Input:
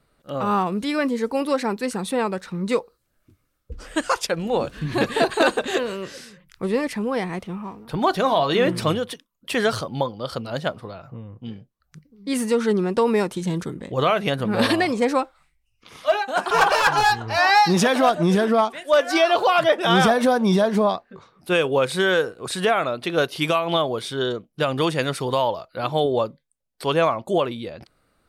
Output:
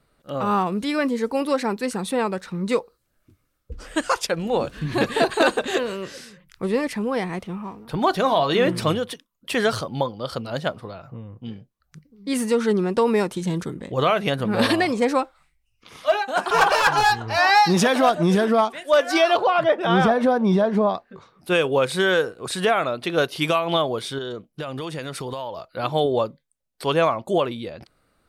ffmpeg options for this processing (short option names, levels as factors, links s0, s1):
-filter_complex "[0:a]asettb=1/sr,asplit=3[s0][s1][s2];[s0]atrim=end=19.374[s3];[s1]atrim=start=19.37:end=20.95,asetpts=PTS-STARTPTS,afade=t=in:d=0.004:c=qsin,afade=t=out:st=1.576:d=0.004:c=qsin,lowpass=f=1600:p=1[s4];[s2]atrim=start=20.946[s5];[s3][s4]acrossfade=d=0.004:c1=hsin:c2=qsin[s6];[s6][s5]acrossfade=d=0.004:c1=qsin:c2=hsin,asettb=1/sr,asplit=3[s7][s8][s9];[s7]atrim=end=24.184[s10];[s8]atrim=start=24.18:end=25.7,asetpts=PTS-STARTPTS,afade=t=in:d=0.004:c=qsin,afade=t=out:st=1.516:d=0.004:c=qsin,acompressor=threshold=0.0447:ratio=6:attack=3.2:release=140:knee=1:detection=peak[s11];[s9]atrim=start=25.696[s12];[s10][s11]acrossfade=d=0.004:c1=hsin:c2=qsin[s13];[s13][s12]acrossfade=d=0.004:c1=qsin:c2=hsin"